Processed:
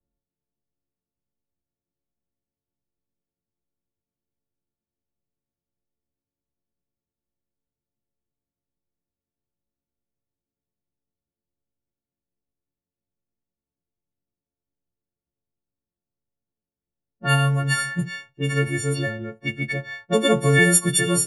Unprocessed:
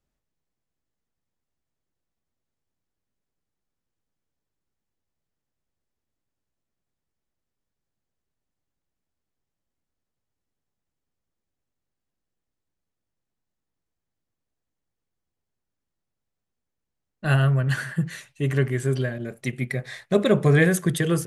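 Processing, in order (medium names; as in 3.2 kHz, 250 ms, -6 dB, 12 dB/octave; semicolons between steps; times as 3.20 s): partials quantised in pitch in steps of 4 st; level-controlled noise filter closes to 470 Hz, open at -18.5 dBFS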